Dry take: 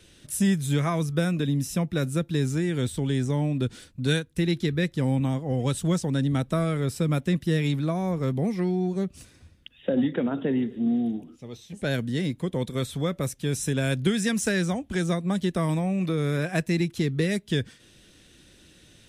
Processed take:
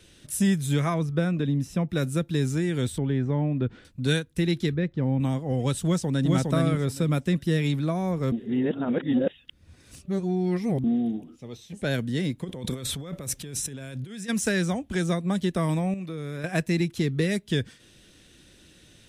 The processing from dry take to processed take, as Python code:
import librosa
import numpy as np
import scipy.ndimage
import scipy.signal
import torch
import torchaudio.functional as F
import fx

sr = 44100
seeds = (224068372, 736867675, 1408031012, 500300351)

y = fx.lowpass(x, sr, hz=2200.0, slope=6, at=(0.94, 1.89))
y = fx.lowpass(y, sr, hz=2000.0, slope=12, at=(2.98, 3.85))
y = fx.spacing_loss(y, sr, db_at_10k=33, at=(4.74, 5.2))
y = fx.echo_throw(y, sr, start_s=5.82, length_s=0.52, ms=410, feedback_pct=15, wet_db=-1.5)
y = fx.over_compress(y, sr, threshold_db=-36.0, ratio=-1.0, at=(12.43, 14.28), fade=0.02)
y = fx.edit(y, sr, fx.reverse_span(start_s=8.32, length_s=2.52),
    fx.clip_gain(start_s=15.94, length_s=0.5, db=-8.5), tone=tone)